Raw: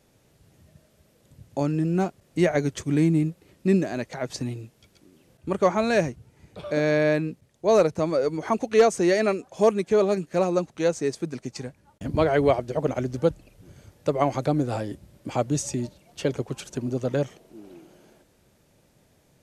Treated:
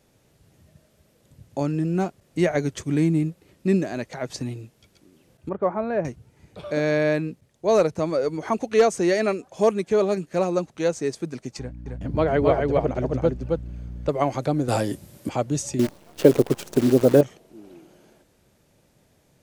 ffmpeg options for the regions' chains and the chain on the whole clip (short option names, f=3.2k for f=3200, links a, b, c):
-filter_complex "[0:a]asettb=1/sr,asplit=3[a][b][c];[a]atrim=end=5.494[d];[b]atrim=start=5.49:end=6.05,asetpts=PTS-STARTPTS,afade=t=in:d=0.004:c=qsin,afade=t=out:st=0.556:d=0.004:c=qsin,lowpass=1.1k,lowshelf=f=470:g=-5[e];[c]atrim=start=6.046[f];[d][e]acrossfade=d=0.004:c1=hsin:c2=qsin[g];[g][f]acrossfade=d=0.004:c1=qsin:c2=hsin,asettb=1/sr,asplit=3[h][i][j];[h]atrim=end=11.594[k];[i]atrim=start=11.59:end=14.09,asetpts=PTS-STARTPTS,afade=t=in:d=0.004:c=qsin,afade=t=out:st=2.496:d=0.004:c=qsin,lowpass=f=2.4k:p=1,aeval=exprs='val(0)+0.0141*(sin(2*PI*60*n/s)+sin(2*PI*2*60*n/s)/2+sin(2*PI*3*60*n/s)/3+sin(2*PI*4*60*n/s)/4+sin(2*PI*5*60*n/s)/5)':c=same,aecho=1:1:268:0.708,atrim=end_sample=110250[l];[j]atrim=start=14.086[m];[k][l]acrossfade=d=0.004:c1=hsin:c2=qsin[n];[n][m]acrossfade=d=0.004:c1=qsin:c2=hsin,asettb=1/sr,asplit=3[o][p][q];[o]atrim=end=14.684[r];[p]atrim=start=14.68:end=15.29,asetpts=PTS-STARTPTS,afade=t=in:d=0.004:c=qsin,afade=t=out:st=0.606:d=0.004:c=qsin,highpass=91,highshelf=f=6.5k:g=11.5,acontrast=59[s];[q]atrim=start=15.286[t];[r][s]acrossfade=d=0.004:c1=hsin:c2=qsin[u];[u][t]acrossfade=d=0.004:c1=qsin:c2=hsin,asettb=1/sr,asplit=3[v][w][x];[v]atrim=end=15.794[y];[w]atrim=start=15.79:end=17.21,asetpts=PTS-STARTPTS,afade=t=in:d=0.004:c=qsin,afade=t=out:st=1.416:d=0.004:c=qsin,equalizer=f=370:w=0.52:g=12.5,acrusher=bits=6:dc=4:mix=0:aa=0.000001[z];[x]atrim=start=17.206[aa];[y][z]acrossfade=d=0.004:c1=hsin:c2=qsin[ab];[ab][aa]acrossfade=d=0.004:c1=qsin:c2=hsin"